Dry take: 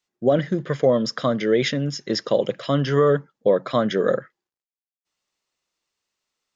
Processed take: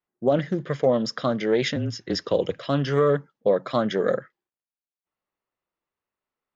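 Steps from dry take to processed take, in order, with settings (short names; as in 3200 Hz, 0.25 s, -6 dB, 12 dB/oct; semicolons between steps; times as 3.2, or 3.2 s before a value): 1.76–2.59 frequency shift -27 Hz; low-pass opened by the level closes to 1600 Hz, open at -18 dBFS; Doppler distortion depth 0.14 ms; gain -2.5 dB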